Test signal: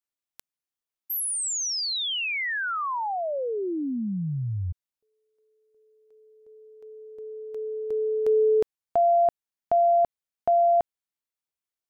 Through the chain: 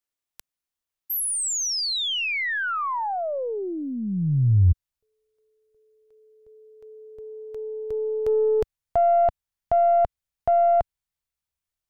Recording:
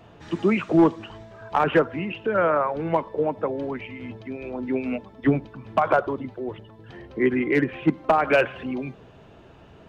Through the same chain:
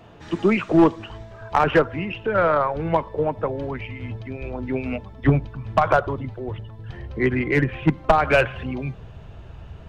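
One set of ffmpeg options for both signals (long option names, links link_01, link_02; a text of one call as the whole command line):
ffmpeg -i in.wav -af "asubboost=boost=7.5:cutoff=99,aeval=exprs='0.447*(cos(1*acos(clip(val(0)/0.447,-1,1)))-cos(1*PI/2))+0.224*(cos(2*acos(clip(val(0)/0.447,-1,1)))-cos(2*PI/2))+0.0794*(cos(4*acos(clip(val(0)/0.447,-1,1)))-cos(4*PI/2))+0.00501*(cos(7*acos(clip(val(0)/0.447,-1,1)))-cos(7*PI/2))':channel_layout=same,volume=3dB" out.wav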